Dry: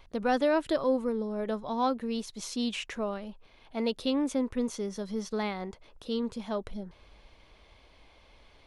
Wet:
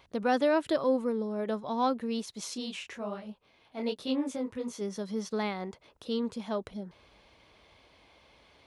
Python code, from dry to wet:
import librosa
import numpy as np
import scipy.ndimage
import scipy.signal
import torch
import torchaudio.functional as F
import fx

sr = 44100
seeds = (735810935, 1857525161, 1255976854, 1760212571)

y = scipy.signal.sosfilt(scipy.signal.butter(2, 88.0, 'highpass', fs=sr, output='sos'), x)
y = fx.detune_double(y, sr, cents=42, at=(2.55, 4.8), fade=0.02)